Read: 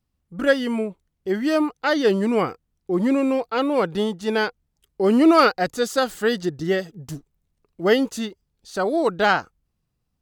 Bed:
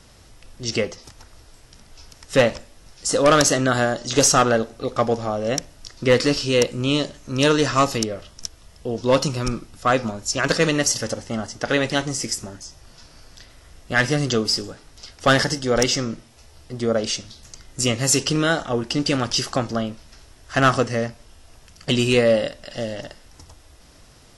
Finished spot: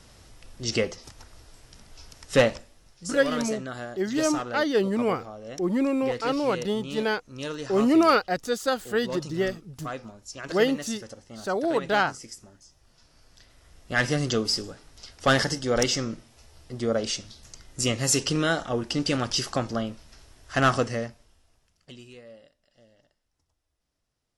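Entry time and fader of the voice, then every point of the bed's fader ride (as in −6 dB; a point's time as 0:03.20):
2.70 s, −4.5 dB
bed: 0:02.37 −2.5 dB
0:03.32 −16.5 dB
0:12.58 −16.5 dB
0:14.06 −4.5 dB
0:20.88 −4.5 dB
0:22.20 −31 dB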